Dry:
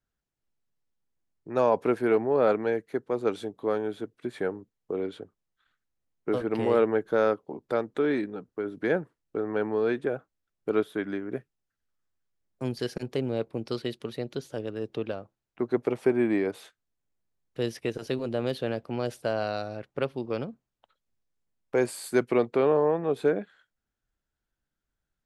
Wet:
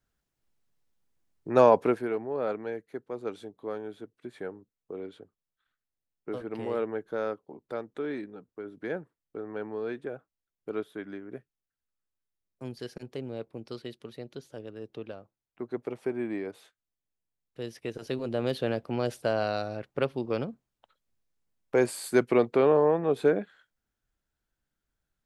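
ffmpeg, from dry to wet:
-af "volume=5.01,afade=t=out:st=1.62:d=0.47:silence=0.223872,afade=t=in:st=17.68:d=0.94:silence=0.354813"

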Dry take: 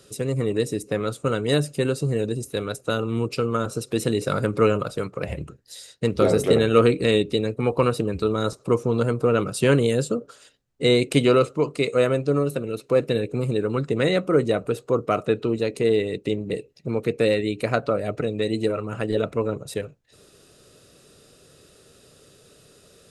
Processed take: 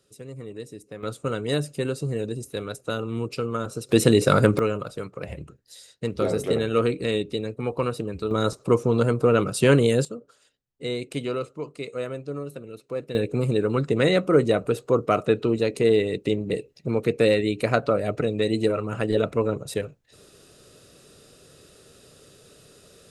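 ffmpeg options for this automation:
-af "asetnsamples=n=441:p=0,asendcmd='1.03 volume volume -4dB;3.89 volume volume 6dB;4.59 volume volume -5.5dB;8.31 volume volume 1dB;10.05 volume volume -11dB;13.15 volume volume 1dB',volume=0.2"

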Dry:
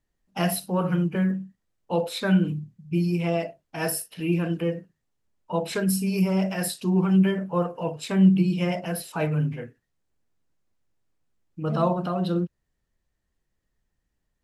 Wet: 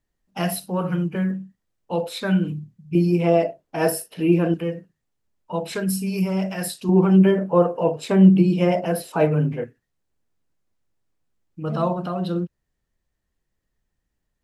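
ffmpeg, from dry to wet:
-af "asetnsamples=n=441:p=0,asendcmd='2.95 equalizer g 10;4.54 equalizer g 0;6.89 equalizer g 10;9.64 equalizer g 0.5',equalizer=f=470:t=o:w=2.4:g=0.5"

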